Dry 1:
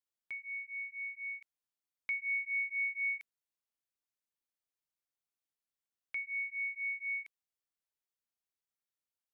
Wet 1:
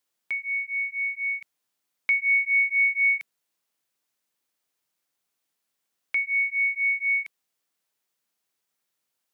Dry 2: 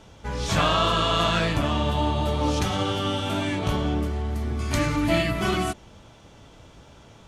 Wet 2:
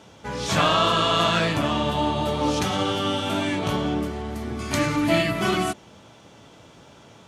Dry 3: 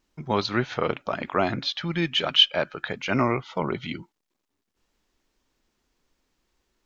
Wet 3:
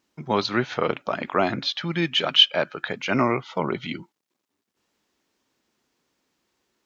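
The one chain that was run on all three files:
high-pass 130 Hz 12 dB/octave; normalise loudness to -23 LUFS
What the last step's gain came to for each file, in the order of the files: +13.0 dB, +2.0 dB, +2.0 dB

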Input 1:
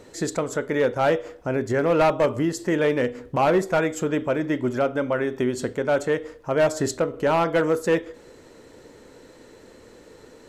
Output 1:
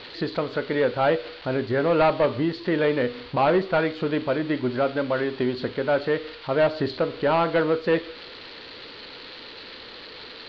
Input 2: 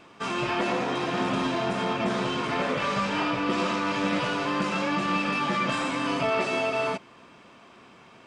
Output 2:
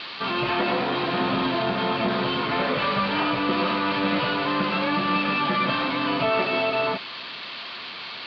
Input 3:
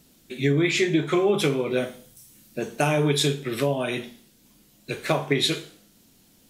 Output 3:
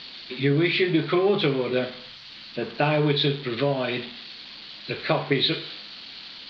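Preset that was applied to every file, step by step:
zero-crossing glitches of -20 dBFS; Chebyshev low-pass 4.5 kHz, order 6; normalise loudness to -24 LUFS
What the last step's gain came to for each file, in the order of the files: 0.0 dB, +3.0 dB, +0.5 dB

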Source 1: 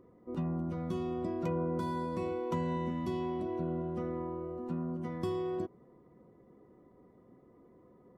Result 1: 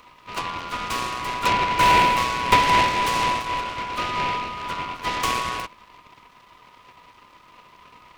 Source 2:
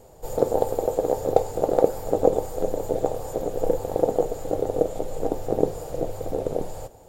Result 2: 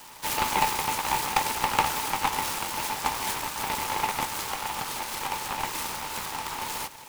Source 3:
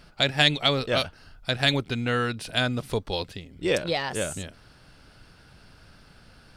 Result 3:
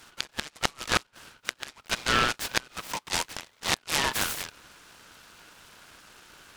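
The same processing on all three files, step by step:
steep high-pass 880 Hz 96 dB/octave; inverted gate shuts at -15 dBFS, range -29 dB; delay time shaken by noise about 1.3 kHz, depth 0.091 ms; peak normalisation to -6 dBFS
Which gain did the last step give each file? +24.5 dB, +15.5 dB, +6.0 dB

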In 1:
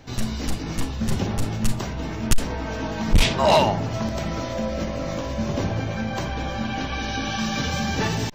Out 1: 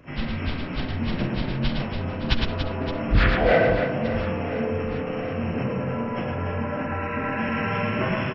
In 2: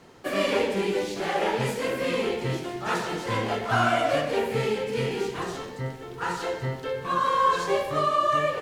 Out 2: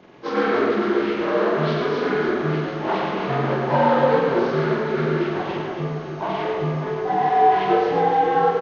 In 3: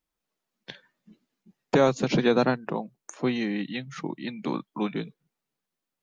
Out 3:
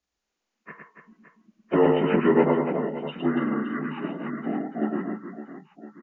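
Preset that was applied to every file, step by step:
frequency axis rescaled in octaves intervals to 75%; reverse bouncing-ball echo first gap 110 ms, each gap 1.6×, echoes 5; peak normalisation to -6 dBFS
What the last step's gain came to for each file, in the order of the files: -0.5 dB, +5.0 dB, +1.5 dB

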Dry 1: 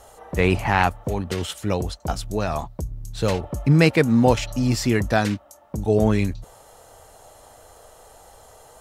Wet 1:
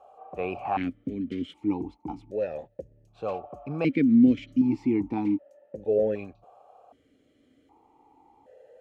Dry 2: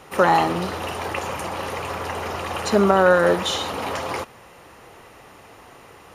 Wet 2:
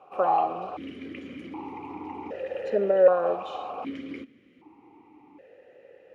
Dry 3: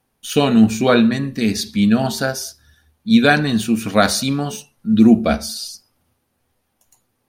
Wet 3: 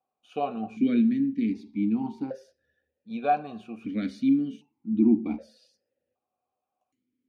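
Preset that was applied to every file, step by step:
tilt shelf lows +6.5 dB, about 1.1 kHz; band-stop 670 Hz, Q 12; stepped vowel filter 1.3 Hz; normalise loudness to -27 LUFS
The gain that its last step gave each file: +2.0 dB, +1.0 dB, -4.0 dB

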